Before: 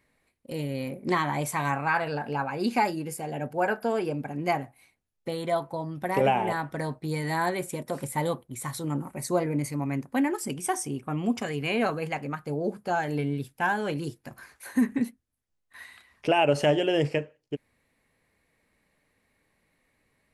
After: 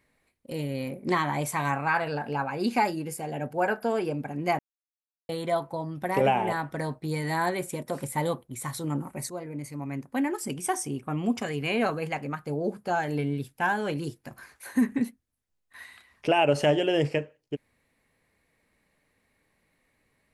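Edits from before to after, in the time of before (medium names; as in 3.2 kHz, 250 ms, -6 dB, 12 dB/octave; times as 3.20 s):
4.59–5.29 s: mute
9.30–10.57 s: fade in, from -13 dB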